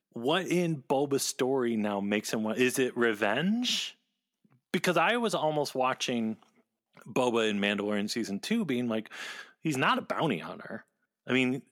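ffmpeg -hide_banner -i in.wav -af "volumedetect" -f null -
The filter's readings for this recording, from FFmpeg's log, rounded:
mean_volume: -30.2 dB
max_volume: -13.0 dB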